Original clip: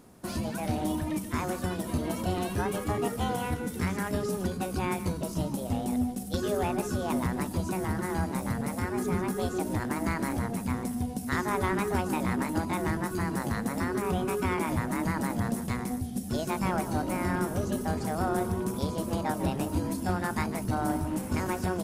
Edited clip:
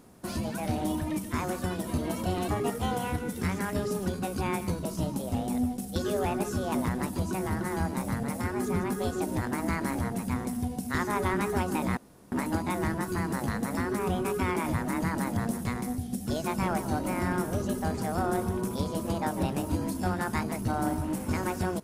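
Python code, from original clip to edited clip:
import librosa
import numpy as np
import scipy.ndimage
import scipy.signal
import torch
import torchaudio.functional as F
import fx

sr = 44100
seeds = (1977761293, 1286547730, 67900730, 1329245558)

y = fx.edit(x, sr, fx.cut(start_s=2.48, length_s=0.38),
    fx.insert_room_tone(at_s=12.35, length_s=0.35), tone=tone)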